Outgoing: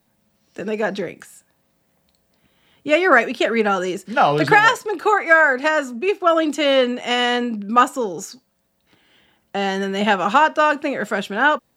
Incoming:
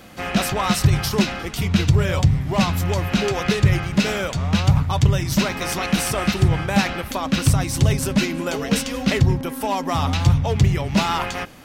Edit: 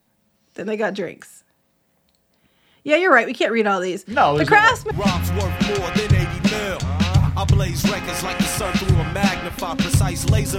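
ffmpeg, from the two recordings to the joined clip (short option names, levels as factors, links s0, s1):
-filter_complex "[1:a]asplit=2[s0][s1];[0:a]apad=whole_dur=10.58,atrim=end=10.58,atrim=end=4.912[s2];[s1]atrim=start=2.438:end=8.11[s3];[s0]atrim=start=1.64:end=2.44,asetpts=PTS-STARTPTS,volume=0.133,afade=t=in:d=0.004:c=hsin,afade=t=out:st=0.796:d=0.004:c=hsin,adelay=4110[s4];[s2][s3]acrossfade=d=0.004:c1=hsin:c2=hsin[s5];[s5][s4]amix=inputs=2:normalize=0"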